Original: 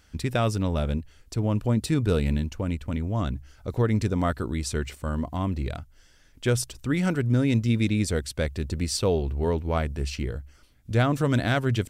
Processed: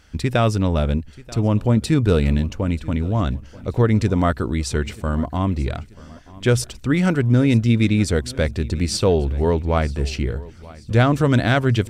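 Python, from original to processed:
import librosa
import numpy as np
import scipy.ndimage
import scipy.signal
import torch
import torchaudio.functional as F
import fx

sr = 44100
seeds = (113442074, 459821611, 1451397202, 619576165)

p1 = fx.high_shelf(x, sr, hz=9000.0, db=-9.0)
p2 = p1 + fx.echo_feedback(p1, sr, ms=934, feedback_pct=44, wet_db=-21, dry=0)
y = p2 * 10.0 ** (6.5 / 20.0)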